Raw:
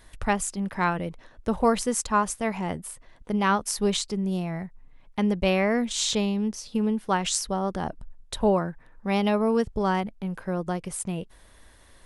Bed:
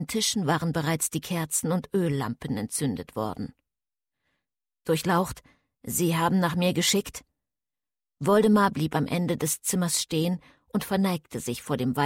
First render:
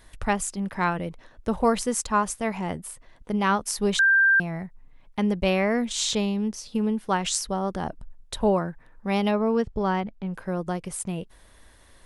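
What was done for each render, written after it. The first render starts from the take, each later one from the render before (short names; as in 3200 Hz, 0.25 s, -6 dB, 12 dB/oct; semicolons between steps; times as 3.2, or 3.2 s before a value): 3.99–4.4 bleep 1580 Hz -15 dBFS; 9.31–10.34 air absorption 100 m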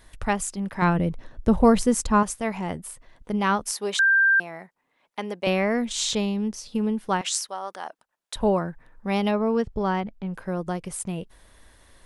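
0.82–2.23 low shelf 360 Hz +11 dB; 3.71–5.47 HPF 410 Hz; 7.21–8.36 HPF 770 Hz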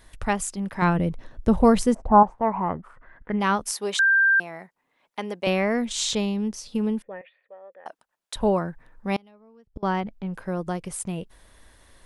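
1.93–3.39 synth low-pass 660 Hz -> 1900 Hz, resonance Q 5.6; 7.02–7.86 vocal tract filter e; 9.16–9.83 flipped gate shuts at -20 dBFS, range -30 dB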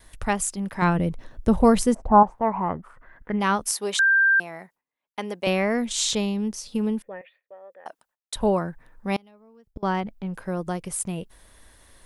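gate with hold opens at -48 dBFS; high shelf 9000 Hz +8 dB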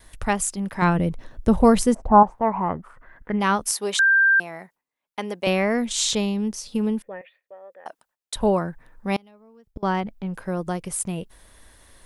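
gain +1.5 dB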